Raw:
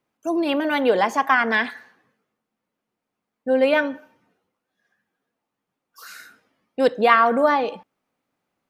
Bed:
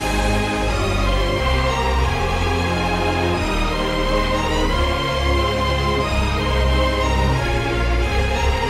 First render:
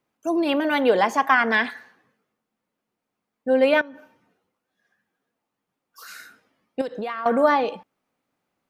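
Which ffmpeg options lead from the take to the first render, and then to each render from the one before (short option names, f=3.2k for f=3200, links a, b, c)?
-filter_complex "[0:a]asettb=1/sr,asplit=3[a][b][c];[a]atrim=end=3.814[d];[b]atrim=start=3.81:end=6.08,asetpts=PTS-STARTPTS,afade=t=in:d=0.004:c=qsin,afade=t=out:st=2.266:d=0.004:c=qsin,acompressor=threshold=-37dB:ratio=10:attack=3.2:release=140:knee=1:detection=peak[e];[c]atrim=start=6.076[f];[d][e]acrossfade=d=0.004:c1=hsin:c2=qsin[g];[g][f]acrossfade=d=0.004:c1=qsin:c2=hsin,asettb=1/sr,asplit=3[h][i][j];[h]atrim=end=6.814[k];[i]atrim=start=6.81:end=7.26,asetpts=PTS-STARTPTS,afade=t=in:d=0.004:c=qsin,afade=t=out:st=0.446:d=0.004:c=qsin,acompressor=threshold=-25dB:ratio=20:attack=3.2:release=140:knee=1:detection=peak[l];[j]atrim=start=7.256[m];[k][l]acrossfade=d=0.004:c1=hsin:c2=qsin[n];[n][m]acrossfade=d=0.004:c1=qsin:c2=hsin"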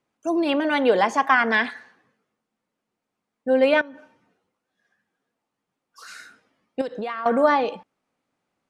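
-af "lowpass=f=10k:w=0.5412,lowpass=f=10k:w=1.3066"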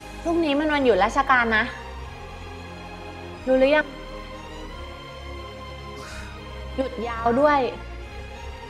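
-filter_complex "[1:a]volume=-18dB[a];[0:a][a]amix=inputs=2:normalize=0"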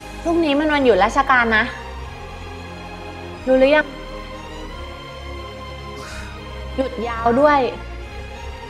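-af "volume=4.5dB,alimiter=limit=-2dB:level=0:latency=1"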